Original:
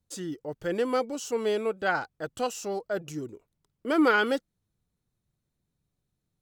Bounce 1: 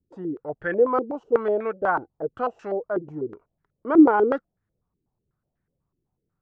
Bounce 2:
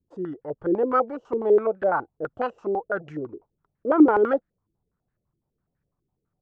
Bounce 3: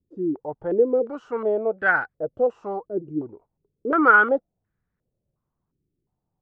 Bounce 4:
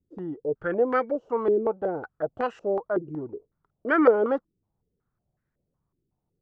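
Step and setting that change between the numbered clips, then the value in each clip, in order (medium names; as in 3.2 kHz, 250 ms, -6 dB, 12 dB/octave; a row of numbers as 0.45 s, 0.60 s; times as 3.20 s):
step-sequenced low-pass, rate: 8.1 Hz, 12 Hz, 2.8 Hz, 5.4 Hz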